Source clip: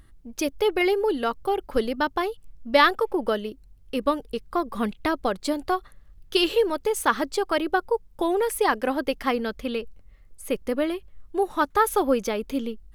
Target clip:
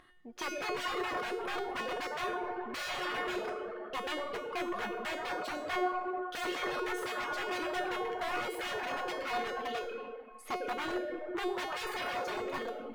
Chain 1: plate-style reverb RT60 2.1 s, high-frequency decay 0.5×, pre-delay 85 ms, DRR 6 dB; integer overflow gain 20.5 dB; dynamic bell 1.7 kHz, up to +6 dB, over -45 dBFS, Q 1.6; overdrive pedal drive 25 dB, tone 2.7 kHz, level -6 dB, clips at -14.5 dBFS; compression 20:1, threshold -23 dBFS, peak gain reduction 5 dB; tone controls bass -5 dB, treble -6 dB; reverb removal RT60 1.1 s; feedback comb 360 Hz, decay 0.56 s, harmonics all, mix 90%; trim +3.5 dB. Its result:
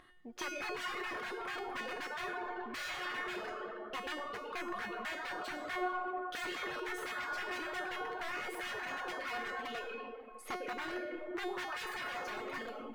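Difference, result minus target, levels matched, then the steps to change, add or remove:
compression: peak gain reduction +5 dB; 500 Hz band -2.5 dB
change: dynamic bell 490 Hz, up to +6 dB, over -45 dBFS, Q 1.6; remove: compression 20:1, threshold -23 dBFS, peak gain reduction 5 dB

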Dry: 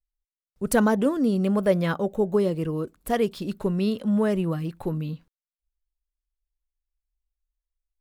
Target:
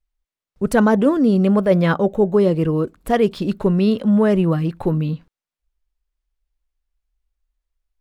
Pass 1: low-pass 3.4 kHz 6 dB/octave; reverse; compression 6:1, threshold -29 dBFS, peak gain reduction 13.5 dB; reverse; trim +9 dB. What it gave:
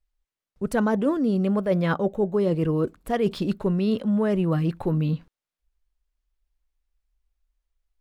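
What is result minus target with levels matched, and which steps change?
compression: peak gain reduction +8 dB
change: compression 6:1, threshold -19.5 dBFS, peak gain reduction 5.5 dB

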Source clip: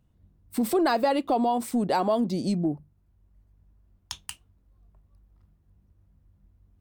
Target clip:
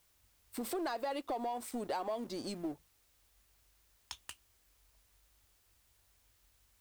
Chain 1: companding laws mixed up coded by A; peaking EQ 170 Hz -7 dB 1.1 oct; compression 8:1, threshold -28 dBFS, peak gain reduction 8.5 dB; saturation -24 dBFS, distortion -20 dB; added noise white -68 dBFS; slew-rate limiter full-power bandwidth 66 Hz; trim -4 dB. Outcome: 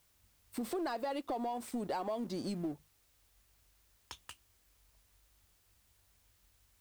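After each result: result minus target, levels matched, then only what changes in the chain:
125 Hz band +6.0 dB; slew-rate limiter: distortion +4 dB
change: peaking EQ 170 Hz -16.5 dB 1.1 oct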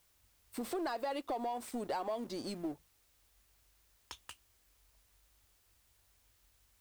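slew-rate limiter: distortion +6 dB
change: slew-rate limiter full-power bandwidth 157.5 Hz

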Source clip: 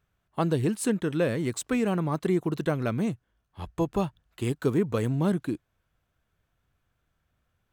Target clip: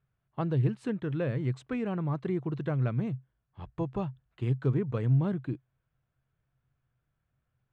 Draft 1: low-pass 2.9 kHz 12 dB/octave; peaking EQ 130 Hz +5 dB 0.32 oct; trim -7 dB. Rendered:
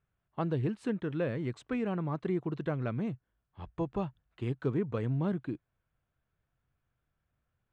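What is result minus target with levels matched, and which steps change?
125 Hz band -3.0 dB
change: peaking EQ 130 Hz +15 dB 0.32 oct

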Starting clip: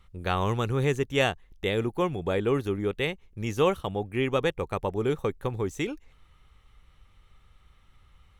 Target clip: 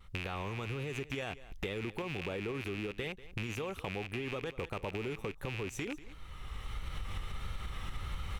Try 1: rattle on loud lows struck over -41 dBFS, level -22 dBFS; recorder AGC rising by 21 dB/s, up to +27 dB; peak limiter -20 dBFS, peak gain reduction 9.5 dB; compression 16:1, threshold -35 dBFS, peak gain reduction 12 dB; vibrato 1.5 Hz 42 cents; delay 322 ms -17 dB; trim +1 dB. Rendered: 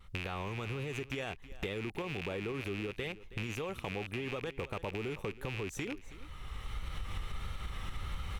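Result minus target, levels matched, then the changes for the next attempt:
echo 131 ms late
change: delay 191 ms -17 dB

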